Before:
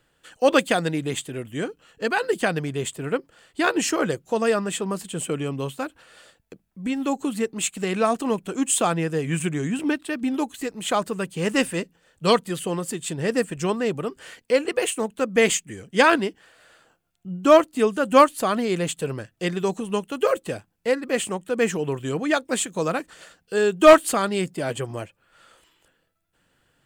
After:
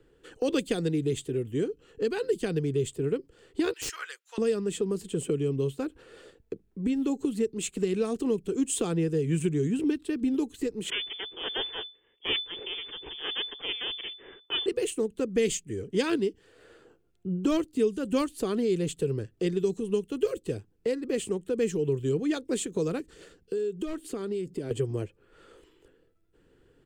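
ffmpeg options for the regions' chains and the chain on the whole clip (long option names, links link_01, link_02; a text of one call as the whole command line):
ffmpeg -i in.wav -filter_complex "[0:a]asettb=1/sr,asplit=3[link_01][link_02][link_03];[link_01]atrim=end=3.734[link_04];[link_02]atrim=start=3.73:end=4.38,asetpts=PTS-STARTPTS,afade=type=in:duration=0.004:curve=qsin,afade=type=out:start_time=0.646:duration=0.004:curve=qsin,highpass=frequency=1400:width=0.5412,highpass=frequency=1400:width=1.3066,aeval=exprs='(mod(7.5*val(0)+1,2)-1)/7.5':channel_layout=same[link_05];[link_03]atrim=start=4.376[link_06];[link_04][link_05]acrossfade=duration=0.004:curve1=hsin:curve2=qsin[link_07];[link_07][link_06]acrossfade=duration=0.004:curve1=qsin:curve2=hsin,asettb=1/sr,asplit=3[link_08][link_09][link_10];[link_08]atrim=end=10.904[link_11];[link_09]atrim=start=10.9:end=14.66,asetpts=PTS-STARTPTS,afade=type=in:duration=0.004:curve=qsin,afade=type=out:start_time=3.756:duration=0.004:curve=qsin,highpass=frequency=280:poles=1,aeval=exprs='max(val(0),0)':channel_layout=same,lowpass=frequency=3000:width_type=q:width=0.5098,lowpass=frequency=3000:width_type=q:width=0.6013,lowpass=frequency=3000:width_type=q:width=0.9,lowpass=frequency=3000:width_type=q:width=2.563,afreqshift=-3500[link_12];[link_10]atrim=start=14.656[link_13];[link_11][link_12]acrossfade=duration=0.004:curve1=hsin:curve2=qsin[link_14];[link_14][link_13]acrossfade=duration=0.004:curve1=qsin:curve2=hsin,asettb=1/sr,asplit=3[link_15][link_16][link_17];[link_15]atrim=end=23.004[link_18];[link_16]atrim=start=23:end=24.71,asetpts=PTS-STARTPTS,afade=type=in:duration=0.004:curve=qsin,afade=type=out:start_time=1.706:duration=0.004:curve=qsin,equalizer=frequency=880:width=0.48:gain=-6,acompressor=threshold=-35dB:ratio=3:attack=3.2:release=140:knee=1:detection=peak[link_19];[link_17]atrim=start=24.706[link_20];[link_18][link_19]acrossfade=duration=0.004:curve1=hsin:curve2=qsin[link_21];[link_21][link_20]acrossfade=duration=0.004:curve1=qsin:curve2=hsin,firequalizer=gain_entry='entry(180,0);entry(420,15);entry(600,-4);entry(12000,-11)':delay=0.05:min_phase=1,acrossover=split=160|3000[link_22][link_23][link_24];[link_23]acompressor=threshold=-32dB:ratio=3[link_25];[link_22][link_25][link_24]amix=inputs=3:normalize=0,lowshelf=frequency=82:gain=11" out.wav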